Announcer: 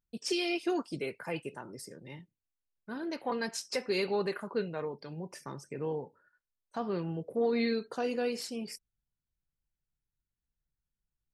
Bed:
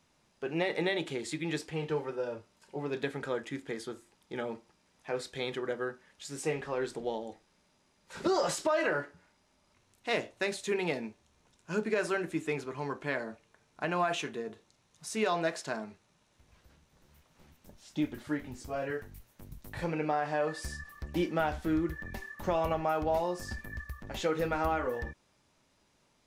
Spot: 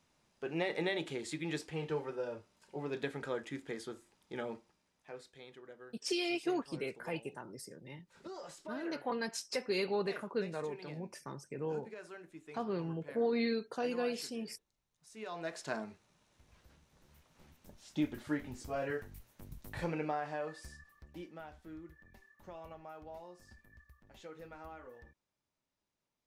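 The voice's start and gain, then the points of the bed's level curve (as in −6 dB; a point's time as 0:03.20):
5.80 s, −3.0 dB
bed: 0:04.55 −4 dB
0:05.44 −18.5 dB
0:15.13 −18.5 dB
0:15.73 −2 dB
0:19.77 −2 dB
0:21.43 −19.5 dB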